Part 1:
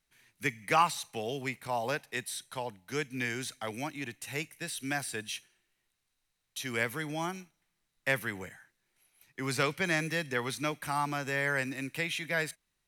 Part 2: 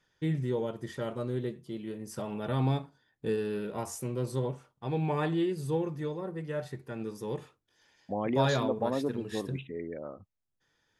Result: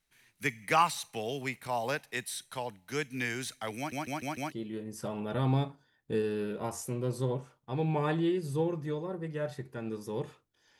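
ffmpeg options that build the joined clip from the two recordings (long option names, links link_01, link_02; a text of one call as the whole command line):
ffmpeg -i cue0.wav -i cue1.wav -filter_complex "[0:a]apad=whole_dur=10.79,atrim=end=10.79,asplit=5[link_01][link_02][link_03][link_04][link_05];[link_01]atrim=end=3.922[link_06];[link_02]atrim=start=3.768:end=3.922[link_07];[link_03]atrim=start=3.768:end=3.922[link_08];[link_04]atrim=start=3.768:end=3.922[link_09];[link_05]atrim=start=3.768:end=3.922[link_10];[1:a]atrim=start=1.658:end=7.93[link_11];[link_06][link_07]acrossfade=duration=0.004:curve1=hsin:curve2=hsin[link_12];[link_12][link_08]acrossfade=duration=0.004:curve1=hsin:curve2=hsin[link_13];[link_13][link_09]acrossfade=duration=0.004:curve1=hsin:curve2=hsin[link_14];[link_14][link_10]acrossfade=duration=0.004:curve1=hsin:curve2=hsin[link_15];[link_15][link_11]acrossfade=duration=0.004:curve1=hsin:curve2=hsin" out.wav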